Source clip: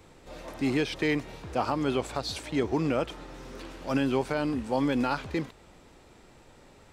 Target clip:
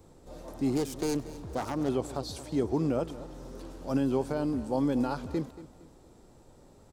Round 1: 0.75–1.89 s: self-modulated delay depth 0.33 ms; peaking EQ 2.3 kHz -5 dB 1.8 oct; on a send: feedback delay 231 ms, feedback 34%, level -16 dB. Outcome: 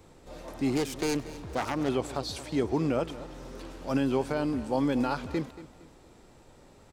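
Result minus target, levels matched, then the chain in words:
2 kHz band +6.5 dB
0.75–1.89 s: self-modulated delay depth 0.33 ms; peaking EQ 2.3 kHz -14.5 dB 1.8 oct; on a send: feedback delay 231 ms, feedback 34%, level -16 dB

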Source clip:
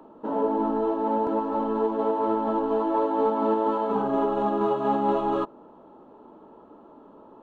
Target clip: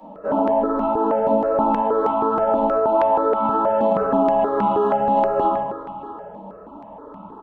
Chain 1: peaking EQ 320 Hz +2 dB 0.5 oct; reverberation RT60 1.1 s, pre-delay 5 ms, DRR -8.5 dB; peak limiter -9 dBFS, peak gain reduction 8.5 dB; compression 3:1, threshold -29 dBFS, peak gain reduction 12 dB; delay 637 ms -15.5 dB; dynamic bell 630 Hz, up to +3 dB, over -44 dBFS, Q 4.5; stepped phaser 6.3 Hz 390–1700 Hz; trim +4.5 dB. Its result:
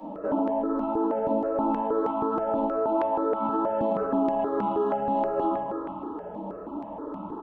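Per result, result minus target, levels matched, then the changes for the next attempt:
compression: peak gain reduction +7.5 dB; 250 Hz band +5.0 dB
change: compression 3:1, threshold -18.5 dBFS, peak gain reduction 5 dB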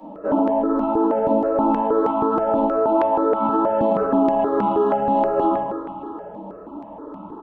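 250 Hz band +4.0 dB
change: peaking EQ 320 Hz -8.5 dB 0.5 oct

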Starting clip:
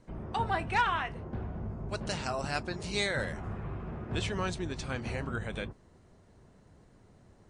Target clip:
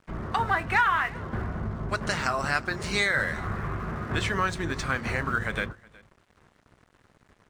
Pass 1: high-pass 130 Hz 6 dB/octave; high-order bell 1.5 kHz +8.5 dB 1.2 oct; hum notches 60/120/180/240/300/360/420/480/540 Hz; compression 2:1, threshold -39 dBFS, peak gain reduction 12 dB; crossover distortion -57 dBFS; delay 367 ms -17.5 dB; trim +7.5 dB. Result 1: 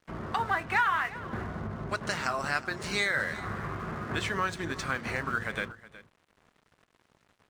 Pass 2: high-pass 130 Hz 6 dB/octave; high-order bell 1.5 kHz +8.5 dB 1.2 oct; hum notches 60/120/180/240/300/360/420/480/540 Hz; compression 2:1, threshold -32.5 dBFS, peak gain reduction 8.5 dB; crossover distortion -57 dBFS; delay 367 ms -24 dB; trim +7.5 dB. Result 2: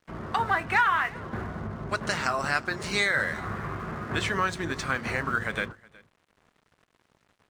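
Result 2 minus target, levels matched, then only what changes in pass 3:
125 Hz band -3.5 dB
remove: high-pass 130 Hz 6 dB/octave

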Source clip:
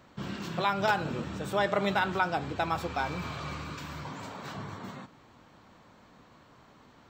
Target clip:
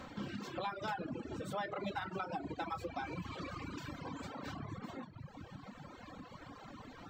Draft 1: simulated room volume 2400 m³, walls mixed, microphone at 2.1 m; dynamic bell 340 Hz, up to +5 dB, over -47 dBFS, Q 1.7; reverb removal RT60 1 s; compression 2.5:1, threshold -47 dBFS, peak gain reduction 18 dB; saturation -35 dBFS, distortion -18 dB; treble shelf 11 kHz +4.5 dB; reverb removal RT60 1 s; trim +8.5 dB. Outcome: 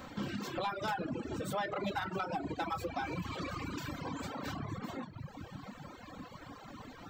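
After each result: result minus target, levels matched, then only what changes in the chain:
compression: peak gain reduction -5 dB; 8 kHz band +2.5 dB
change: compression 2.5:1, threshold -55 dBFS, peak gain reduction 22.5 dB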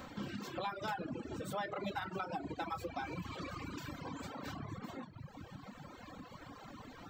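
8 kHz band +2.5 dB
change: treble shelf 11 kHz -7 dB

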